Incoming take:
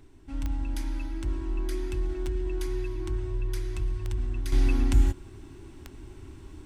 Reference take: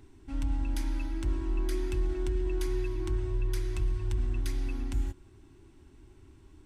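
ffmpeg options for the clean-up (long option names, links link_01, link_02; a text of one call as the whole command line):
ffmpeg -i in.wav -af "adeclick=threshold=4,agate=range=-21dB:threshold=-38dB,asetnsamples=nb_out_samples=441:pad=0,asendcmd='4.52 volume volume -10dB',volume=0dB" out.wav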